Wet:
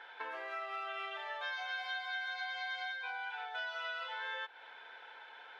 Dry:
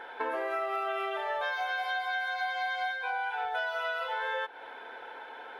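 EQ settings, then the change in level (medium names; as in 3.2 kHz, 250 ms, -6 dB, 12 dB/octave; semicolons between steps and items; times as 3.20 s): distance through air 170 m; pre-emphasis filter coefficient 0.97; +8.0 dB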